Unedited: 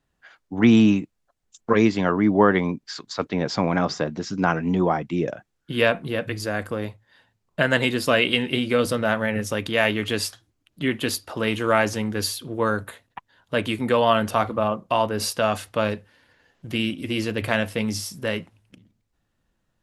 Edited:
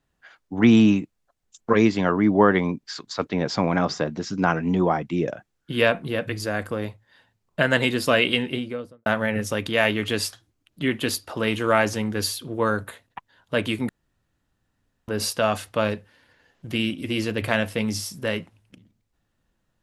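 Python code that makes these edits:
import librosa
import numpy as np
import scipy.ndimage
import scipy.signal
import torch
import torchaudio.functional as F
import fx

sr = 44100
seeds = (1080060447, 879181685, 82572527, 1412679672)

y = fx.studio_fade_out(x, sr, start_s=8.26, length_s=0.8)
y = fx.edit(y, sr, fx.room_tone_fill(start_s=13.89, length_s=1.19), tone=tone)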